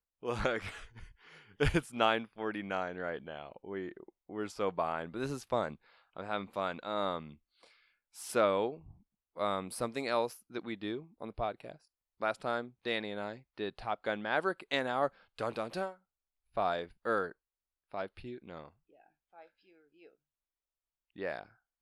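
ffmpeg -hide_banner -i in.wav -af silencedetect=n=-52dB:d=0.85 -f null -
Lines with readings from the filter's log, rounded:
silence_start: 20.08
silence_end: 21.16 | silence_duration: 1.08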